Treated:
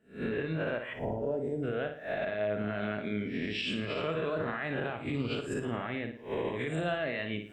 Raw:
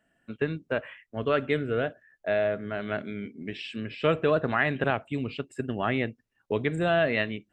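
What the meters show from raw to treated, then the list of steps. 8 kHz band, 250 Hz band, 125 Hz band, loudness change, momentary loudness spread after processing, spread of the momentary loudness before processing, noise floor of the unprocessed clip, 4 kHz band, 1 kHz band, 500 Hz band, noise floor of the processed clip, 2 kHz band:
no reading, -3.0 dB, -4.0 dB, -5.0 dB, 3 LU, 11 LU, -76 dBFS, -1.5 dB, -7.0 dB, -5.5 dB, -46 dBFS, -6.0 dB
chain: reverse spectral sustain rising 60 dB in 0.54 s; recorder AGC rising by 76 dB/s; time-frequency box 0.93–1.63 s, 1–4.7 kHz -28 dB; peak limiter -16 dBFS, peak gain reduction 7.5 dB; flutter echo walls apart 9.8 m, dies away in 0.45 s; trim -8.5 dB

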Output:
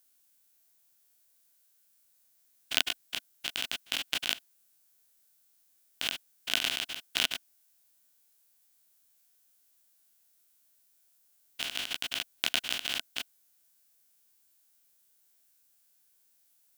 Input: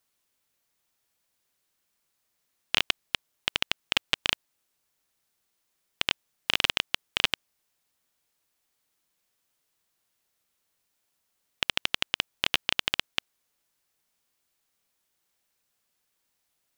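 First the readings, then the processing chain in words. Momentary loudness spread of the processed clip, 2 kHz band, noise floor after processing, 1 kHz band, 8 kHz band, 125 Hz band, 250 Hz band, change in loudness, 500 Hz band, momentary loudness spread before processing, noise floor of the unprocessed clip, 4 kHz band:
10 LU, -5.5 dB, -68 dBFS, -7.5 dB, +2.0 dB, -9.5 dB, -5.0 dB, -4.0 dB, -7.0 dB, 6 LU, -78 dBFS, -4.0 dB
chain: spectrogram pixelated in time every 50 ms; pre-emphasis filter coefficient 0.8; small resonant body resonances 260/680/1500 Hz, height 8 dB, ringing for 25 ms; trim +8.5 dB

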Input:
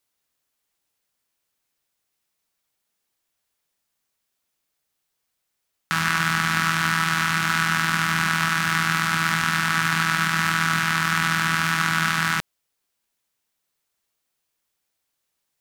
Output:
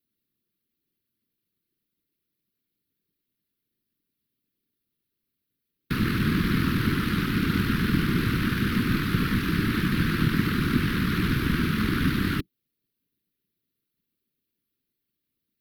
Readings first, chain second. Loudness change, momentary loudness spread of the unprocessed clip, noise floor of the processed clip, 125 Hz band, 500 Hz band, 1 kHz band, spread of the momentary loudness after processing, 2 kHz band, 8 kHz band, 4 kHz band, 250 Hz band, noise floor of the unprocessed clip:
-4.0 dB, 1 LU, -83 dBFS, +4.0 dB, +6.5 dB, -12.0 dB, 2 LU, -10.5 dB, -15.0 dB, -7.5 dB, +7.0 dB, -78 dBFS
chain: FFT filter 140 Hz 0 dB, 210 Hz +13 dB, 360 Hz +3 dB, 730 Hz -25 dB, 1.2 kHz -12 dB, 1.7 kHz -10 dB, 4.2 kHz -6 dB, 7.3 kHz -23 dB, 12 kHz -3 dB; whisper effect

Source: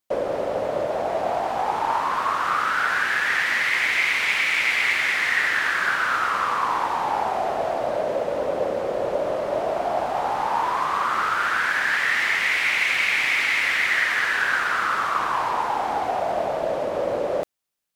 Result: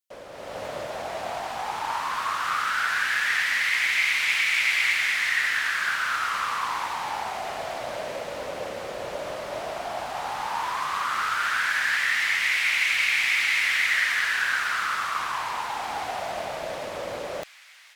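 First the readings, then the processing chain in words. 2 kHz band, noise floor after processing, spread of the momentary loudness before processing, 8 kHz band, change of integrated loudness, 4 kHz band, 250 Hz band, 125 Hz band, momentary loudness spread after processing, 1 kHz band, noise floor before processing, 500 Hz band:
-2.0 dB, -40 dBFS, 6 LU, +2.0 dB, -3.0 dB, +0.5 dB, -10.0 dB, -6.0 dB, 13 LU, -6.0 dB, -27 dBFS, -10.0 dB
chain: feedback echo behind a high-pass 541 ms, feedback 78%, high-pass 2.9 kHz, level -17 dB; level rider gain up to 11.5 dB; amplifier tone stack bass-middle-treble 5-5-5

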